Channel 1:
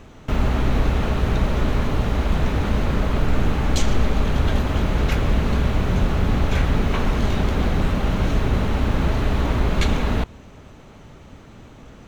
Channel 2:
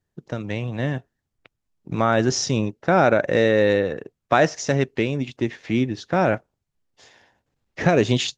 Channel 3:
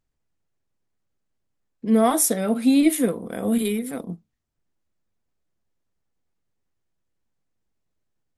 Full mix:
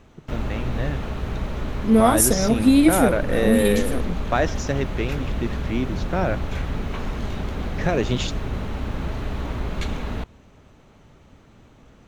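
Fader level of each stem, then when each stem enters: -7.5, -4.5, +2.0 dB; 0.00, 0.00, 0.00 s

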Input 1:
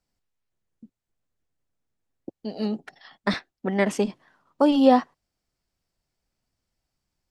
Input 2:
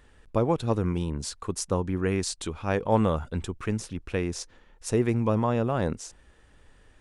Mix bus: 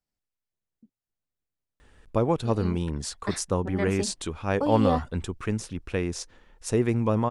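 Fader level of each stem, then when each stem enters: -9.0, +0.5 dB; 0.00, 1.80 s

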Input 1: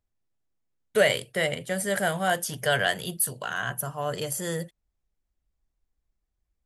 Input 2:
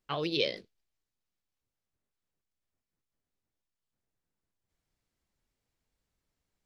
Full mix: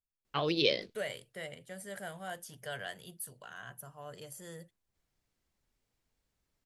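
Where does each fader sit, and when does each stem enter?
-17.0, +1.5 dB; 0.00, 0.25 s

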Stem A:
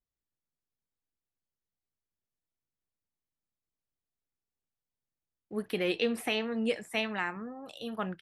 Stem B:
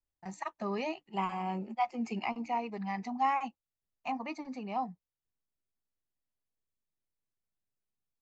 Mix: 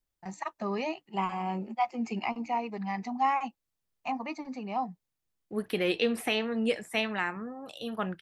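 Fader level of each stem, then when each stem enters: +2.0, +2.5 dB; 0.00, 0.00 s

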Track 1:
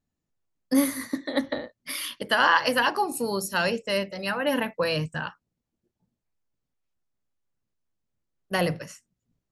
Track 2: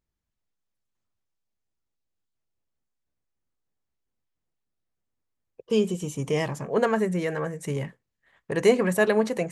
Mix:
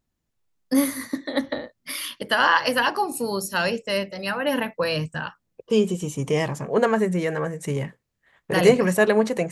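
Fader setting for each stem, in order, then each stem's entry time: +1.5, +3.0 dB; 0.00, 0.00 s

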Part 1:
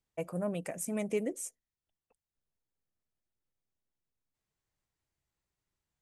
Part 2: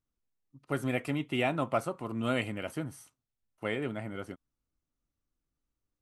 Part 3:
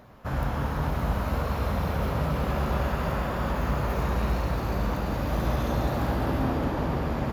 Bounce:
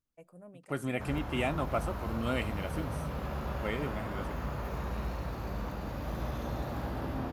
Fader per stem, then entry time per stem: -17.5, -2.5, -9.5 dB; 0.00, 0.00, 0.75 s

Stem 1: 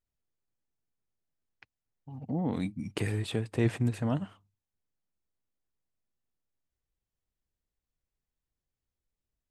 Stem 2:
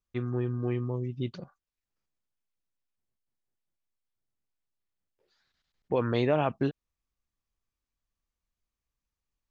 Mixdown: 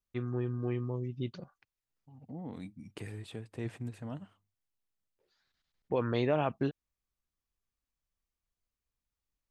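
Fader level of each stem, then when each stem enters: -11.5, -3.5 dB; 0.00, 0.00 s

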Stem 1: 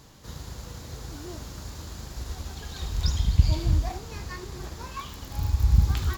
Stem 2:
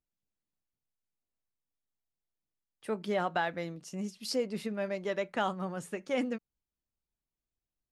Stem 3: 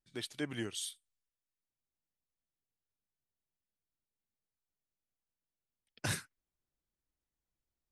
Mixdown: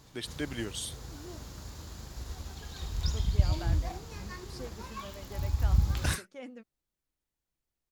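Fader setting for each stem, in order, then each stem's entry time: -5.5, -13.5, +2.5 dB; 0.00, 0.25, 0.00 s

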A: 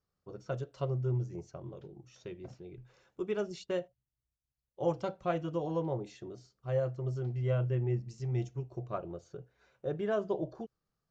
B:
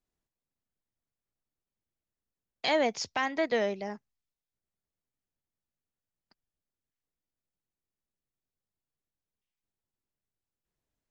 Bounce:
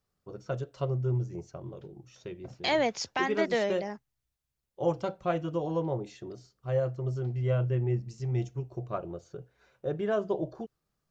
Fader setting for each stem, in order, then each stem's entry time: +3.0, 0.0 dB; 0.00, 0.00 s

